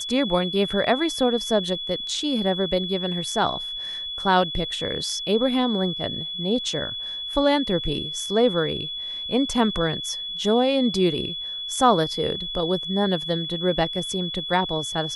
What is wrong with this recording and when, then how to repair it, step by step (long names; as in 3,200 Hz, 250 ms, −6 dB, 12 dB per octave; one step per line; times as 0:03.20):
whistle 3,400 Hz −29 dBFS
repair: notch filter 3,400 Hz, Q 30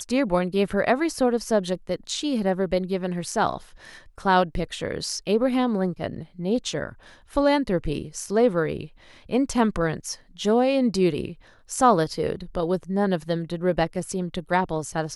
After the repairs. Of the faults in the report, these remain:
none of them is left